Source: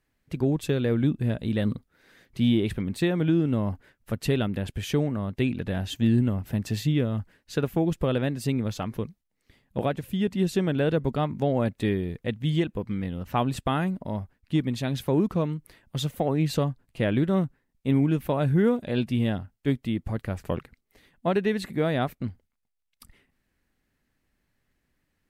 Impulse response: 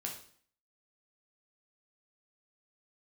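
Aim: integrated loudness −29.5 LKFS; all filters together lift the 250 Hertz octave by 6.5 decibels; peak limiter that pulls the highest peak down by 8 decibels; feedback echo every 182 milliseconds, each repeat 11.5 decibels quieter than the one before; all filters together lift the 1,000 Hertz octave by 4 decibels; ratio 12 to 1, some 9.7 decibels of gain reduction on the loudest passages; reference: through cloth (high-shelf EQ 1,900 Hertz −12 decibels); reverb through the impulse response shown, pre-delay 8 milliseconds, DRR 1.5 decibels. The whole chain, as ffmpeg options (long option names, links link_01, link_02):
-filter_complex "[0:a]equalizer=frequency=250:width_type=o:gain=8,equalizer=frequency=1000:width_type=o:gain=8,acompressor=threshold=-21dB:ratio=12,alimiter=limit=-19dB:level=0:latency=1,aecho=1:1:182|364|546:0.266|0.0718|0.0194,asplit=2[link_01][link_02];[1:a]atrim=start_sample=2205,adelay=8[link_03];[link_02][link_03]afir=irnorm=-1:irlink=0,volume=-1.5dB[link_04];[link_01][link_04]amix=inputs=2:normalize=0,highshelf=frequency=1900:gain=-12,volume=-2.5dB"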